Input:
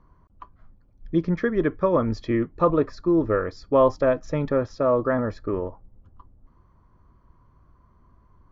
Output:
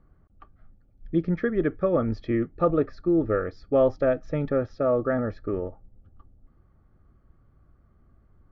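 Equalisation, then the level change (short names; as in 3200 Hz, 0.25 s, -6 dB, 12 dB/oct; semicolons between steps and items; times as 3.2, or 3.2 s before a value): Butterworth band-stop 1000 Hz, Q 3.9; air absorption 190 m; -1.5 dB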